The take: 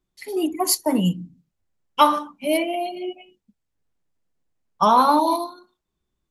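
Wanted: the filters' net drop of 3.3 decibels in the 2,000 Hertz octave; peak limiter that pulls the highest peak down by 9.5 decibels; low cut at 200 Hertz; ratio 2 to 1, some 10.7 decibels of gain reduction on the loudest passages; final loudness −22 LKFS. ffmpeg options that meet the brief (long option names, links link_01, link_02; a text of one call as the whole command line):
ffmpeg -i in.wav -af "highpass=200,equalizer=frequency=2000:width_type=o:gain=-4.5,acompressor=threshold=-32dB:ratio=2,volume=12.5dB,alimiter=limit=-12.5dB:level=0:latency=1" out.wav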